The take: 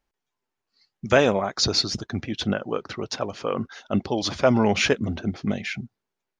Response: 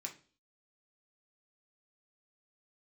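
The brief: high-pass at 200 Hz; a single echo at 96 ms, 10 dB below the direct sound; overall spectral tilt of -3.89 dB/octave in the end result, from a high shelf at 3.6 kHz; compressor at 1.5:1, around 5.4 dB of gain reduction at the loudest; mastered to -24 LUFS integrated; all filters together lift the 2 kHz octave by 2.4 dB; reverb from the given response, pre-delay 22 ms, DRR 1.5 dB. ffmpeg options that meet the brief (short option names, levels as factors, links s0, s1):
-filter_complex "[0:a]highpass=200,equalizer=f=2000:t=o:g=5,highshelf=f=3600:g=-6,acompressor=threshold=0.0447:ratio=1.5,aecho=1:1:96:0.316,asplit=2[s0][s1];[1:a]atrim=start_sample=2205,adelay=22[s2];[s1][s2]afir=irnorm=-1:irlink=0,volume=1.12[s3];[s0][s3]amix=inputs=2:normalize=0,volume=1.26"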